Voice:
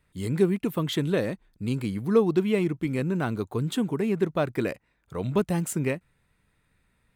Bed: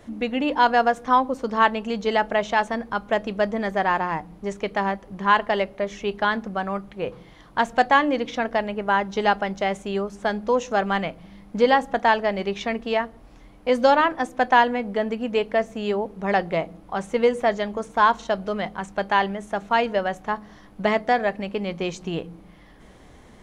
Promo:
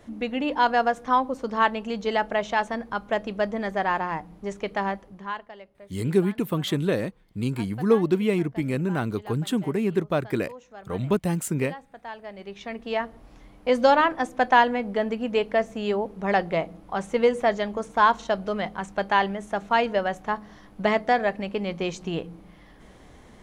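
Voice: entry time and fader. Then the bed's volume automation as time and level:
5.75 s, +1.0 dB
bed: 0:04.98 −3 dB
0:05.54 −22 dB
0:11.96 −22 dB
0:13.12 −1 dB

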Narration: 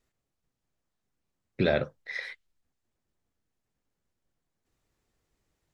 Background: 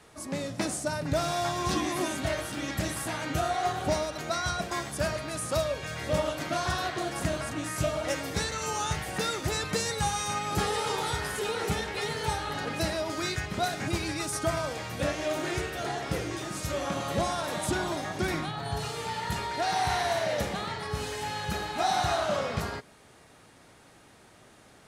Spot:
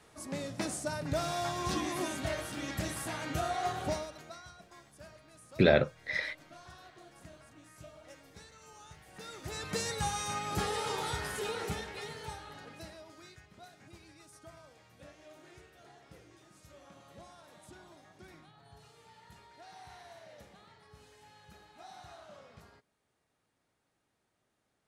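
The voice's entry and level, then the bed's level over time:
4.00 s, +2.0 dB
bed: 0:03.86 −5 dB
0:04.53 −23 dB
0:08.98 −23 dB
0:09.78 −5 dB
0:11.47 −5 dB
0:13.46 −24.5 dB

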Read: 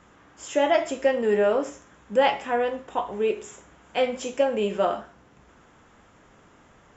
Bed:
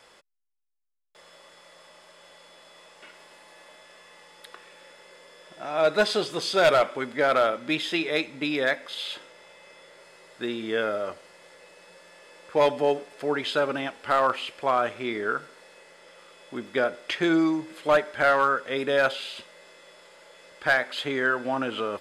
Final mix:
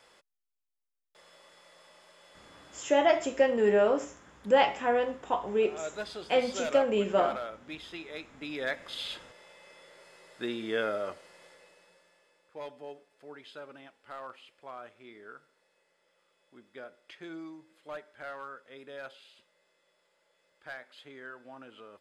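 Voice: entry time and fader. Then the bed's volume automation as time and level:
2.35 s, −2.5 dB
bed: 0:02.75 −5.5 dB
0:03.03 −16 dB
0:08.23 −16 dB
0:08.93 −4 dB
0:11.43 −4 dB
0:12.52 −21 dB

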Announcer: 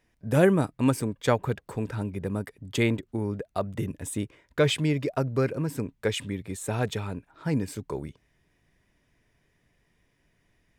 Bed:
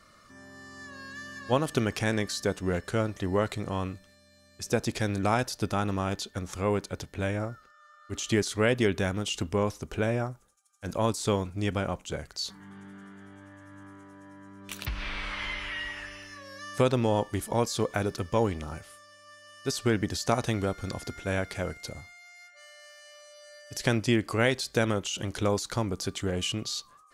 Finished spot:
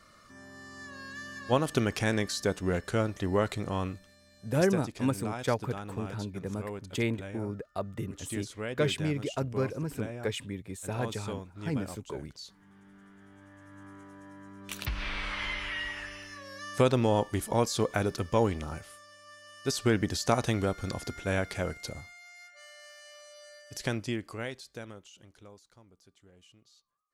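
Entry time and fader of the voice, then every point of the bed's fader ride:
4.20 s, −5.5 dB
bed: 0:04.60 −0.5 dB
0:04.83 −12 dB
0:12.57 −12 dB
0:14.00 0 dB
0:23.42 0 dB
0:25.77 −29 dB

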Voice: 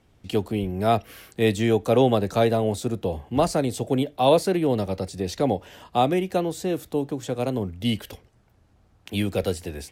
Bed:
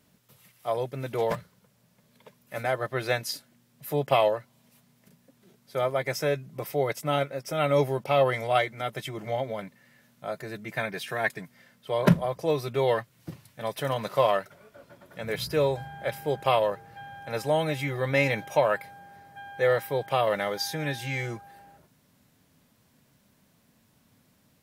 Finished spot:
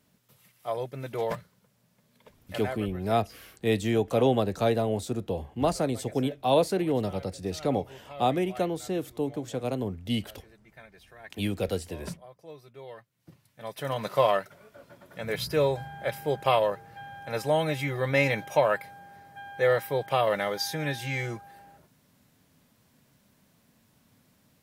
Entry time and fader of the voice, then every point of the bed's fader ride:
2.25 s, −4.5 dB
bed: 0:02.59 −3 dB
0:03.01 −20 dB
0:12.91 −20 dB
0:14.05 0 dB

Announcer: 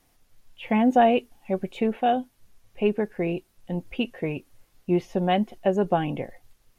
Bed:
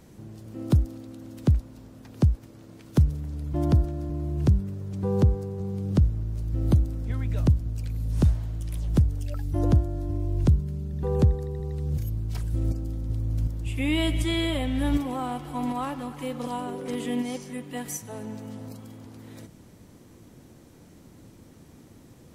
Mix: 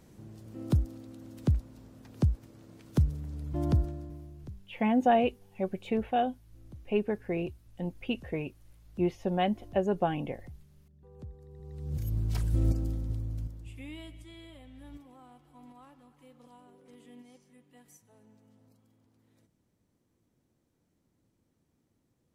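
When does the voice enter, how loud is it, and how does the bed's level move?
4.10 s, −5.5 dB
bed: 0:03.88 −5.5 dB
0:04.64 −28.5 dB
0:11.14 −28.5 dB
0:12.18 0 dB
0:12.86 0 dB
0:14.20 −24 dB

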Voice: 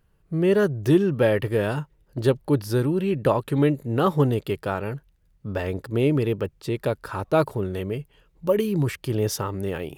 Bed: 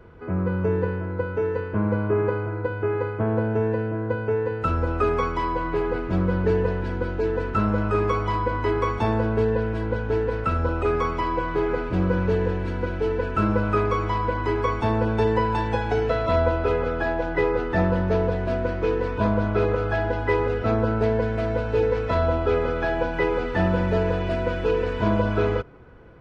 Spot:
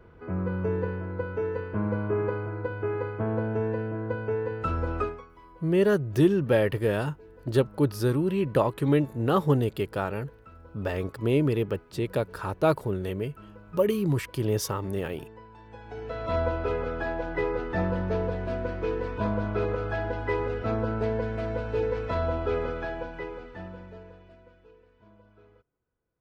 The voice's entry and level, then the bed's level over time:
5.30 s, −2.5 dB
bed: 0:05.01 −5 dB
0:05.26 −26.5 dB
0:15.57 −26.5 dB
0:16.35 −6 dB
0:22.65 −6 dB
0:24.87 −35.5 dB

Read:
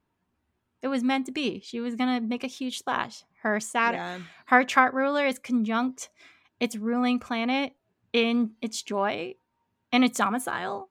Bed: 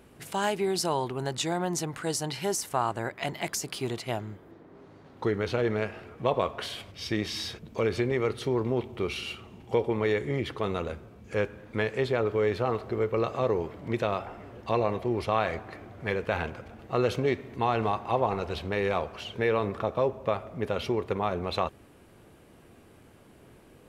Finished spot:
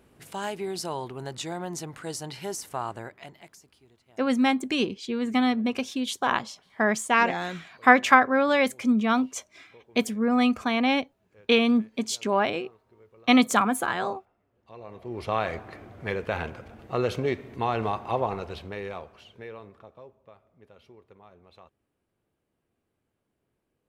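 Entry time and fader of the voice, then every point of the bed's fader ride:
3.35 s, +3.0 dB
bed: 0:02.96 −4.5 dB
0:03.85 −28.5 dB
0:14.49 −28.5 dB
0:15.32 −0.5 dB
0:18.21 −0.5 dB
0:20.26 −24.5 dB

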